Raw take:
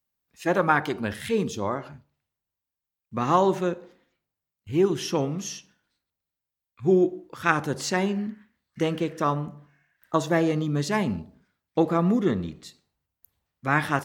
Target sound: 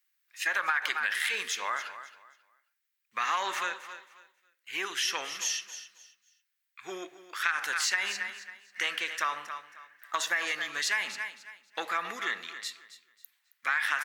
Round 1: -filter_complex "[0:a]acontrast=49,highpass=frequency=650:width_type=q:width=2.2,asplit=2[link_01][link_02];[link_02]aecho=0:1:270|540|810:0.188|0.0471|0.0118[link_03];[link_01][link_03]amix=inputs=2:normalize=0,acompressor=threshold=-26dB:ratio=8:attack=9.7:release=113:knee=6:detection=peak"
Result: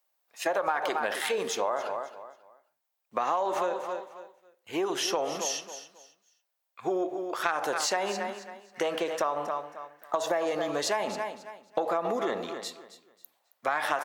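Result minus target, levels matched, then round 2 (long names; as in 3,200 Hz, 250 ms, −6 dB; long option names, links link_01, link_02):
500 Hz band +15.5 dB
-filter_complex "[0:a]acontrast=49,highpass=frequency=1800:width_type=q:width=2.2,asplit=2[link_01][link_02];[link_02]aecho=0:1:270|540|810:0.188|0.0471|0.0118[link_03];[link_01][link_03]amix=inputs=2:normalize=0,acompressor=threshold=-26dB:ratio=8:attack=9.7:release=113:knee=6:detection=peak"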